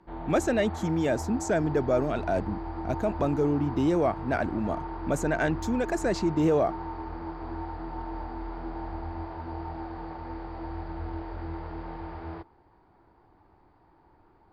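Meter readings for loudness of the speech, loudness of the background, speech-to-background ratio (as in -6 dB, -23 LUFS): -28.0 LUFS, -37.5 LUFS, 9.5 dB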